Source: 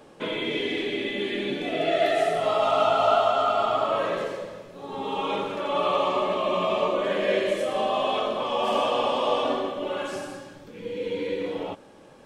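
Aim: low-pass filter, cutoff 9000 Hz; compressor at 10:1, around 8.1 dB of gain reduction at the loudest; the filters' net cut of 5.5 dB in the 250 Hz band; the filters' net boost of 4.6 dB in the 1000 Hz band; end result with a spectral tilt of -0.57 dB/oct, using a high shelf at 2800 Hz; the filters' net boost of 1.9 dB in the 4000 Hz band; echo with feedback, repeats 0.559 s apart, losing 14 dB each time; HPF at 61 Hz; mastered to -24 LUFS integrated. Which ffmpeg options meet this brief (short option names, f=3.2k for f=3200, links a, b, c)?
-af "highpass=61,lowpass=9k,equalizer=f=250:t=o:g=-8.5,equalizer=f=1k:t=o:g=7.5,highshelf=f=2.8k:g=-7.5,equalizer=f=4k:t=o:g=8,acompressor=threshold=-22dB:ratio=10,aecho=1:1:559|1118:0.2|0.0399,volume=3dB"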